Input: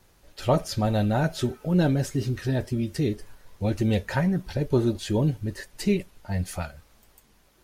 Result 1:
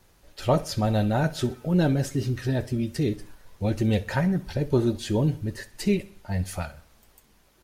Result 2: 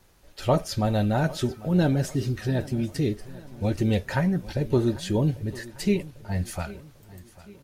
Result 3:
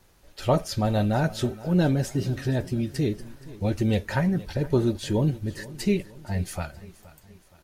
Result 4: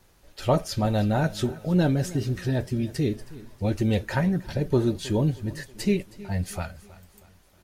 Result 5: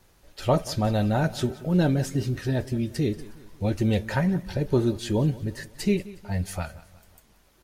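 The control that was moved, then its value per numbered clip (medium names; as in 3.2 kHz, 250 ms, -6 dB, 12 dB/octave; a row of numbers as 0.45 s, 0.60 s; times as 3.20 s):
feedback delay, time: 64 ms, 796 ms, 471 ms, 318 ms, 181 ms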